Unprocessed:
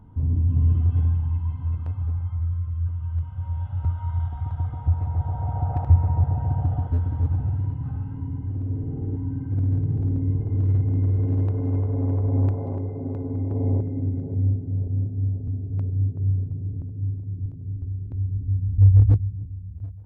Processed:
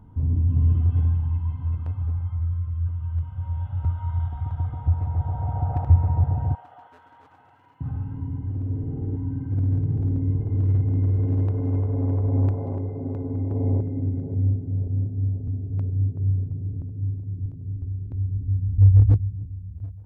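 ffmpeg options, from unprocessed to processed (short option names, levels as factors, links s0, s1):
-filter_complex "[0:a]asettb=1/sr,asplit=3[s0][s1][s2];[s0]atrim=end=6.554[s3];[s1]atrim=start=6.55:end=7.81,asetpts=PTS-STARTPTS,afade=t=in:d=0.004:c=qsin,afade=t=out:st=1.256:d=0.004:c=qsin,highpass=1100[s4];[s2]atrim=start=7.806[s5];[s3][s4]acrossfade=d=0.004:c1=hsin:c2=qsin[s6];[s6][s5]acrossfade=d=0.004:c1=qsin:c2=hsin"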